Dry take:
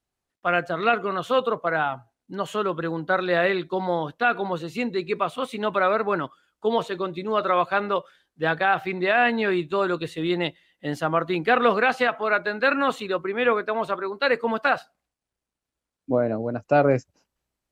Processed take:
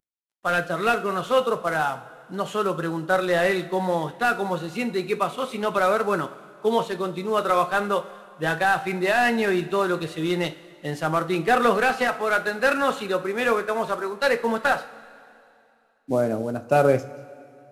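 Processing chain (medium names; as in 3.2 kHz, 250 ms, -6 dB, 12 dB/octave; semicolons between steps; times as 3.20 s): CVSD coder 64 kbps; two-slope reverb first 0.35 s, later 2.6 s, from -16 dB, DRR 8.5 dB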